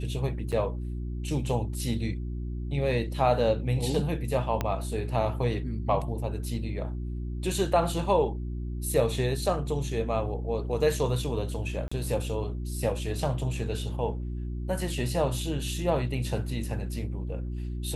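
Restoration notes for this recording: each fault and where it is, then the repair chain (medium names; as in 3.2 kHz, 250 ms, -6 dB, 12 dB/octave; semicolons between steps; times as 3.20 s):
hum 60 Hz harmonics 6 -33 dBFS
0.52–0.53 s: dropout 6.2 ms
4.61 s: pop -13 dBFS
11.88–11.91 s: dropout 35 ms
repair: de-click; de-hum 60 Hz, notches 6; interpolate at 0.52 s, 6.2 ms; interpolate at 11.88 s, 35 ms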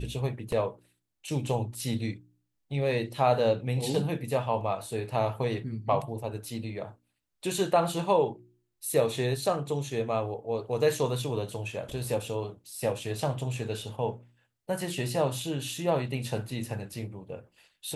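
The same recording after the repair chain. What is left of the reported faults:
4.61 s: pop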